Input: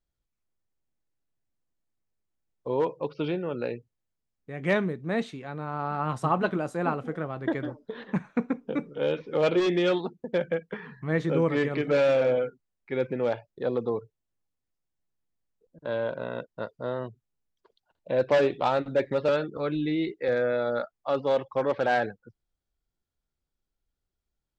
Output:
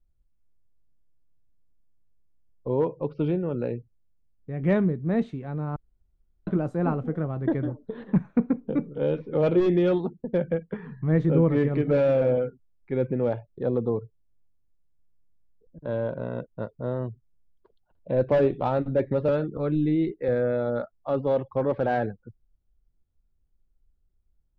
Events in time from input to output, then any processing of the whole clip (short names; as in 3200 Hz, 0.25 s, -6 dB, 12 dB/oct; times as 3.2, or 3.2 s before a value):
5.76–6.47 room tone
whole clip: tilt -4 dB/oct; gain -3 dB